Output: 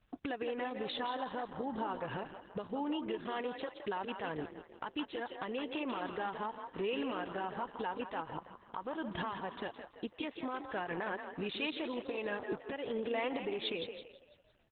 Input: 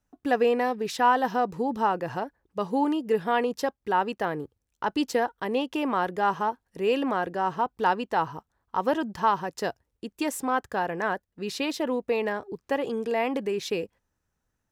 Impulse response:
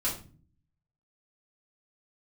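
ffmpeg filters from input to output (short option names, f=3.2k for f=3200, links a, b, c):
-filter_complex "[0:a]asettb=1/sr,asplit=3[a][b][c];[a]atrim=end=7.634[d];[b]atrim=start=7.63:end=9.02,asetpts=PTS-STARTPTS,afade=t=in:d=0.004:c=qsin,afade=t=out:st=1.386:d=0.004:c=qsin,acrossover=split=2600[e][f];[f]acompressor=threshold=-49dB:ratio=4:attack=1:release=60[g];[e][g]amix=inputs=2:normalize=0[h];[c]atrim=start=9.016[i];[d][h]acrossfade=d=0.004:c1=hsin:c2=qsin[j];[j][i]acrossfade=d=0.004:c1=qsin:c2=hsin,equalizer=f=2.6k:w=0.33:g=-2,asettb=1/sr,asplit=3[k][l][m];[k]atrim=end=0.794[n];[l]atrim=start=0.79:end=2.02,asetpts=PTS-STARTPTS,afade=t=in:d=0.004:c=qsin,afade=t=out:st=1.226:d=0.004:c=qsin,bandreject=f=2.5k:w=5.6[o];[m]atrim=start=2.016[p];[n][o]acrossfade=d=0.004:c1=hsin:c2=qsin[q];[q][p]acrossfade=d=0.004:c1=qsin:c2=hsin,acompressor=threshold=-36dB:ratio=10,alimiter=level_in=12.5dB:limit=-24dB:level=0:latency=1:release=438,volume=-12.5dB,crystalizer=i=6:c=0,asplit=6[r][s][t][u][v][w];[s]adelay=167,afreqshift=32,volume=-8dB[x];[t]adelay=334,afreqshift=64,volume=-14.9dB[y];[u]adelay=501,afreqshift=96,volume=-21.9dB[z];[v]adelay=668,afreqshift=128,volume=-28.8dB[aa];[w]adelay=835,afreqshift=160,volume=-35.7dB[ab];[r][x][y][z][aa][ab]amix=inputs=6:normalize=0,aresample=8000,aresample=44100,volume=7dB" -ar 48000 -c:a libopus -b:a 8k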